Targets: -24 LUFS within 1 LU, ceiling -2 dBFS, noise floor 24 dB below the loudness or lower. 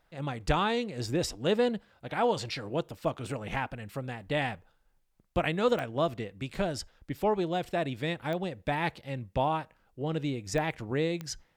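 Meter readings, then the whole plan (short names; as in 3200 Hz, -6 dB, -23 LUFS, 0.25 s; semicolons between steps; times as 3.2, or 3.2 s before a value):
clicks 4; loudness -31.5 LUFS; peak -13.0 dBFS; loudness target -24.0 LUFS
-> de-click; gain +7.5 dB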